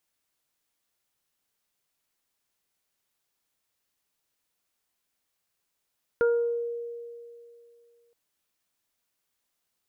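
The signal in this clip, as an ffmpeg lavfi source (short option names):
-f lavfi -i "aevalsrc='0.119*pow(10,-3*t/2.56)*sin(2*PI*471*t)+0.0119*pow(10,-3*t/0.65)*sin(2*PI*942*t)+0.0473*pow(10,-3*t/0.5)*sin(2*PI*1413*t)':d=1.92:s=44100"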